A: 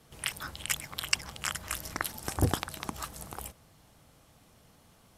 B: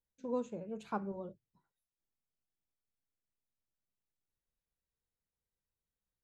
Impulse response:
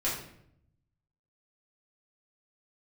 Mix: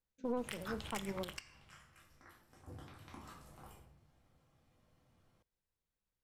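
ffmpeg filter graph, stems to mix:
-filter_complex "[0:a]adelay=250,volume=9dB,afade=type=out:start_time=1.04:duration=0.74:silence=0.251189,afade=type=in:start_time=2.76:duration=0.42:silence=0.251189,asplit=2[link_01][link_02];[link_02]volume=-17.5dB[link_03];[1:a]volume=2dB,asplit=2[link_04][link_05];[link_05]apad=whole_len=239232[link_06];[link_01][link_06]sidechaingate=range=-33dB:threshold=-55dB:ratio=16:detection=peak[link_07];[2:a]atrim=start_sample=2205[link_08];[link_03][link_08]afir=irnorm=-1:irlink=0[link_09];[link_07][link_04][link_09]amix=inputs=3:normalize=0,highshelf=frequency=4900:gain=-8.5,aeval=exprs='0.168*(cos(1*acos(clip(val(0)/0.168,-1,1)))-cos(1*PI/2))+0.0168*(cos(6*acos(clip(val(0)/0.168,-1,1)))-cos(6*PI/2))':channel_layout=same,alimiter=level_in=2.5dB:limit=-24dB:level=0:latency=1:release=272,volume=-2.5dB"

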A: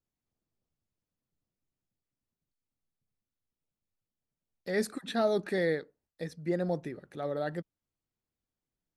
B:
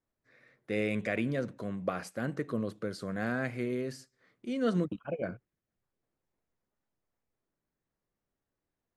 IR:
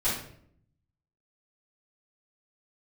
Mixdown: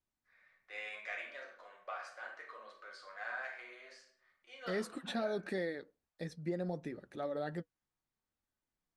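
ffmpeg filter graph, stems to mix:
-filter_complex "[0:a]acompressor=threshold=-31dB:ratio=6,volume=1.5dB[link_01];[1:a]highpass=frequency=780:width=0.5412,highpass=frequency=780:width=1.3066,adynamicsmooth=sensitivity=4:basefreq=5300,volume=-5.5dB,asplit=2[link_02][link_03];[link_03]volume=-5.5dB[link_04];[2:a]atrim=start_sample=2205[link_05];[link_04][link_05]afir=irnorm=-1:irlink=0[link_06];[link_01][link_02][link_06]amix=inputs=3:normalize=0,lowpass=10000,flanger=delay=3.2:depth=2.4:regen=-64:speed=0.7:shape=sinusoidal"

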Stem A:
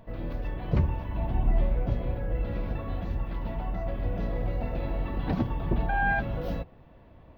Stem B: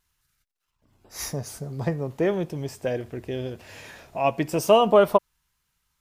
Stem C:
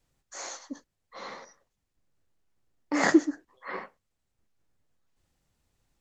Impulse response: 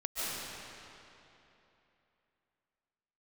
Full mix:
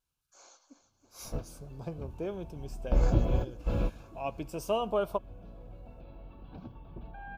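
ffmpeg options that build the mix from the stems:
-filter_complex "[0:a]adelay=1250,volume=2.5dB[link_01];[1:a]volume=-13dB[link_02];[2:a]volume=-17.5dB,asplit=3[link_03][link_04][link_05];[link_04]volume=-12dB[link_06];[link_05]apad=whole_len=380483[link_07];[link_01][link_07]sidechaingate=range=-21dB:threshold=-60dB:ratio=16:detection=peak[link_08];[link_06]aecho=0:1:324|648|972|1296|1620|1944|2268|2592:1|0.56|0.314|0.176|0.0983|0.0551|0.0308|0.0173[link_09];[link_08][link_02][link_03][link_09]amix=inputs=4:normalize=0,asuperstop=centerf=1900:order=4:qfactor=3.5"

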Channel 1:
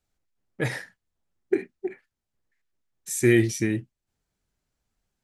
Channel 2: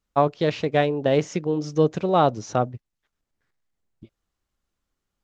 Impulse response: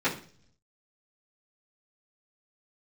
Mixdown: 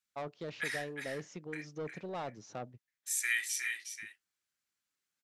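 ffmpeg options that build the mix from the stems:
-filter_complex "[0:a]highpass=frequency=1300:width=0.5412,highpass=frequency=1300:width=1.3066,volume=-3.5dB,asplit=2[link_01][link_02];[link_02]volume=-7dB[link_03];[1:a]highpass=130,adynamicequalizer=threshold=0.0251:dfrequency=440:dqfactor=0.74:tfrequency=440:tqfactor=0.74:attack=5:release=100:ratio=0.375:range=1.5:mode=cutabove:tftype=bell,asoftclip=type=tanh:threshold=-18.5dB,volume=-15.5dB[link_04];[link_03]aecho=0:1:360:1[link_05];[link_01][link_04][link_05]amix=inputs=3:normalize=0"

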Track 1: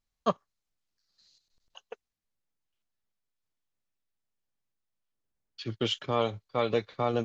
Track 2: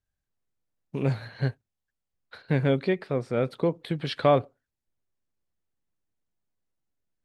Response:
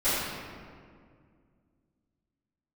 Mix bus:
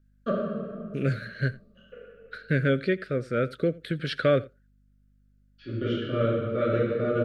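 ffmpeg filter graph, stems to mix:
-filter_complex "[0:a]lowpass=3200,tiltshelf=frequency=1100:gain=5,volume=-6dB,asplit=2[link_01][link_02];[link_02]volume=-8dB[link_03];[1:a]aeval=exprs='val(0)+0.000891*(sin(2*PI*50*n/s)+sin(2*PI*2*50*n/s)/2+sin(2*PI*3*50*n/s)/3+sin(2*PI*4*50*n/s)/4+sin(2*PI*5*50*n/s)/5)':channel_layout=same,volume=-0.5dB,asplit=3[link_04][link_05][link_06];[link_05]volume=-21.5dB[link_07];[link_06]apad=whole_len=319666[link_08];[link_01][link_08]sidechaincompress=threshold=-37dB:ratio=8:attack=16:release=1400[link_09];[2:a]atrim=start_sample=2205[link_10];[link_03][link_10]afir=irnorm=-1:irlink=0[link_11];[link_07]aecho=0:1:85:1[link_12];[link_09][link_04][link_11][link_12]amix=inputs=4:normalize=0,asuperstop=centerf=880:order=8:qfactor=1.5,equalizer=frequency=1500:width=3.2:gain=9"

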